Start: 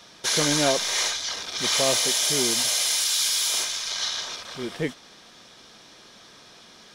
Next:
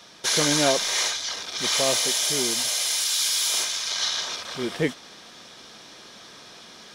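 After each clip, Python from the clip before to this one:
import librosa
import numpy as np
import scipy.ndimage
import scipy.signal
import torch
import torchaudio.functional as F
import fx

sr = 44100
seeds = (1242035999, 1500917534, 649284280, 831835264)

y = fx.low_shelf(x, sr, hz=76.0, db=-7.0)
y = fx.rider(y, sr, range_db=4, speed_s=2.0)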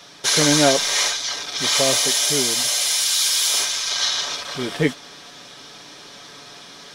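y = x + 0.5 * np.pad(x, (int(7.0 * sr / 1000.0), 0))[:len(x)]
y = y * 10.0 ** (3.5 / 20.0)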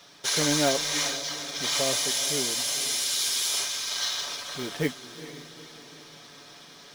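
y = fx.echo_diffused(x, sr, ms=451, feedback_pct=50, wet_db=-13)
y = fx.quant_float(y, sr, bits=2)
y = y * 10.0 ** (-8.0 / 20.0)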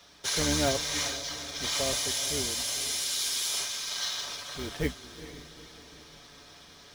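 y = fx.octave_divider(x, sr, octaves=2, level_db=-2.0)
y = y * 10.0 ** (-3.5 / 20.0)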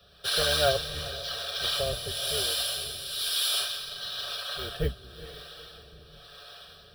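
y = fx.fixed_phaser(x, sr, hz=1400.0, stages=8)
y = fx.harmonic_tremolo(y, sr, hz=1.0, depth_pct=70, crossover_hz=430.0)
y = y * 10.0 ** (8.0 / 20.0)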